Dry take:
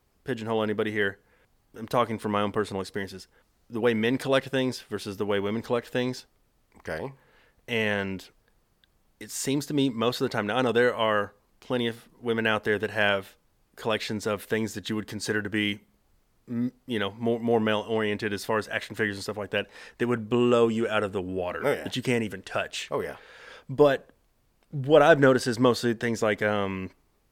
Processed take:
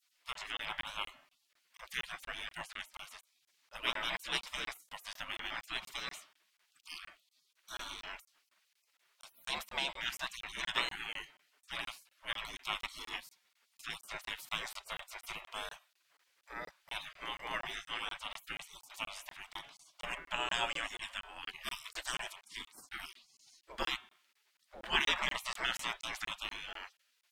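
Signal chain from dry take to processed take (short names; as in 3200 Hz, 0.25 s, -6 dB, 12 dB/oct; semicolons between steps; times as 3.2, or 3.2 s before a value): spectral gain 18.74–20.91, 550–1100 Hz -8 dB; LPF 2100 Hz 6 dB/oct; de-hum 166.2 Hz, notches 23; spectral gate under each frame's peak -30 dB weak; bell 84 Hz -10 dB 0.94 oct; notch 780 Hz, Q 21; crackling interface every 0.24 s, samples 1024, zero, from 0.33; gain +11 dB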